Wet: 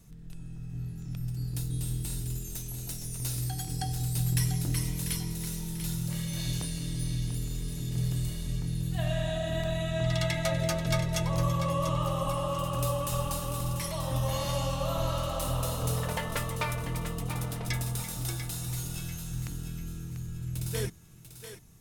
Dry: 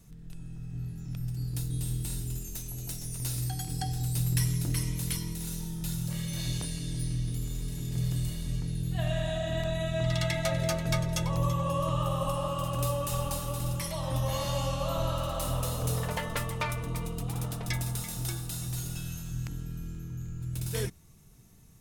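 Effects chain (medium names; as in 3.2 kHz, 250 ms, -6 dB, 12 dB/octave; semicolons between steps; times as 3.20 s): thinning echo 692 ms, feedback 37%, level -9 dB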